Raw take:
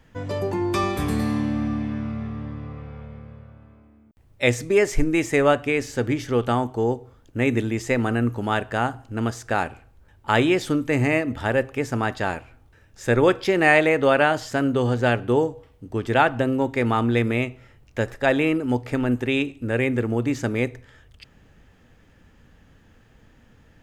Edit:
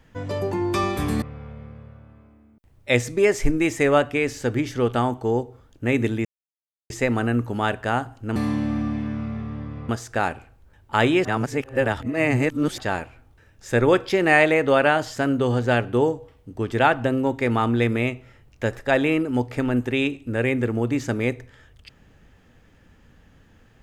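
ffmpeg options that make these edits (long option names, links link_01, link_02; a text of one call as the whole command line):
ffmpeg -i in.wav -filter_complex "[0:a]asplit=7[link_01][link_02][link_03][link_04][link_05][link_06][link_07];[link_01]atrim=end=1.222[link_08];[link_02]atrim=start=2.748:end=7.78,asetpts=PTS-STARTPTS,afade=type=out:start_time=5.028:duration=0.004:curve=hsin,apad=pad_dur=0.65[link_09];[link_03]atrim=start=7.78:end=9.242,asetpts=PTS-STARTPTS,afade=type=in:duration=0.004:curve=hsin[link_10];[link_04]atrim=start=1.218:end=2.752[link_11];[link_05]atrim=start=9.238:end=10.602[link_12];[link_06]atrim=start=10.598:end=12.132,asetpts=PTS-STARTPTS,areverse[link_13];[link_07]atrim=start=12.128[link_14];[link_09][link_10]concat=n=2:v=0:a=1[link_15];[link_08][link_15]acrossfade=duration=0.004:curve1=hsin:curve2=hsin[link_16];[link_16][link_11]acrossfade=duration=0.004:curve1=hsin:curve2=hsin[link_17];[link_17][link_12]acrossfade=duration=0.004:curve1=hsin:curve2=hsin[link_18];[link_18][link_13]acrossfade=duration=0.004:curve1=hsin:curve2=hsin[link_19];[link_19][link_14]acrossfade=duration=0.004:curve1=hsin:curve2=hsin" out.wav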